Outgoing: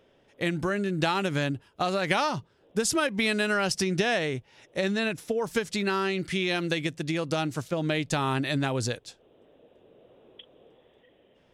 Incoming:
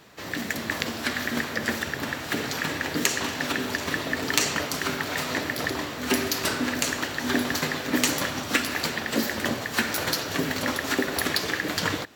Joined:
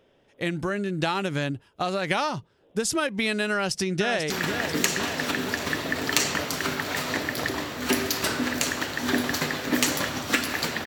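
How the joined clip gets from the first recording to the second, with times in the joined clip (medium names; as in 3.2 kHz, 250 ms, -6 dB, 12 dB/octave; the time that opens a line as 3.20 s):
outgoing
3.51–4.30 s: echo throw 490 ms, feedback 65%, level -7.5 dB
4.30 s: go over to incoming from 2.51 s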